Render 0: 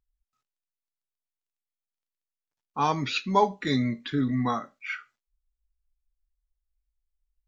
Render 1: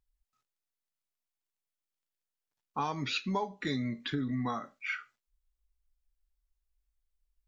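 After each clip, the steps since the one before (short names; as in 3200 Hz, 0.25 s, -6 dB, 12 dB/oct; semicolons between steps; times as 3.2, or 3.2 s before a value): compressor 6:1, threshold -30 dBFS, peak gain reduction 13.5 dB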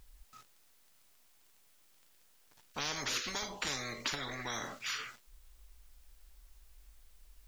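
spectral compressor 10:1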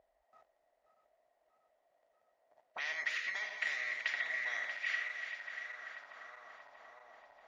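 regenerating reverse delay 0.318 s, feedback 82%, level -9 dB; small resonant body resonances 650/1900 Hz, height 14 dB, ringing for 25 ms; auto-wah 560–2100 Hz, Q 2.3, up, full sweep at -36.5 dBFS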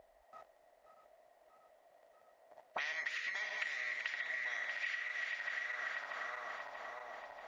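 compressor 16:1, threshold -46 dBFS, peak gain reduction 16 dB; gain +9.5 dB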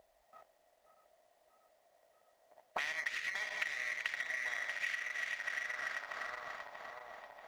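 G.711 law mismatch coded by A; gain +4.5 dB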